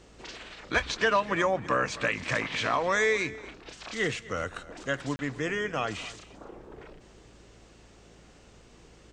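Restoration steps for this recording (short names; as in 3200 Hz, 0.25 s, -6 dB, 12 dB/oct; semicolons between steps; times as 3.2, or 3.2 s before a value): de-hum 55.8 Hz, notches 4; interpolate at 5.16, 30 ms; inverse comb 0.253 s -18.5 dB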